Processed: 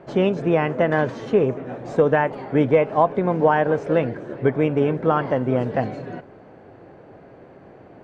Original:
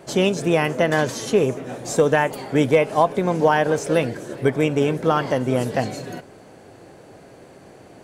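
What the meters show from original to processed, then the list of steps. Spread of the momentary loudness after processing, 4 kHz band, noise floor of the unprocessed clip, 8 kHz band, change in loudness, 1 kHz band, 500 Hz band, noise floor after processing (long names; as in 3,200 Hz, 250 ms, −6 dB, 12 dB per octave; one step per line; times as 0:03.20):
8 LU, can't be measured, −46 dBFS, below −20 dB, −0.5 dB, 0.0 dB, 0.0 dB, −46 dBFS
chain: low-pass filter 1,900 Hz 12 dB per octave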